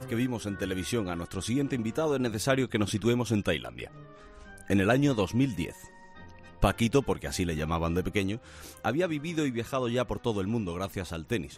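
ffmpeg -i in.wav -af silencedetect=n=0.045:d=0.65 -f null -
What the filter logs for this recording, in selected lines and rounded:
silence_start: 3.84
silence_end: 4.70 | silence_duration: 0.86
silence_start: 5.65
silence_end: 6.63 | silence_duration: 0.98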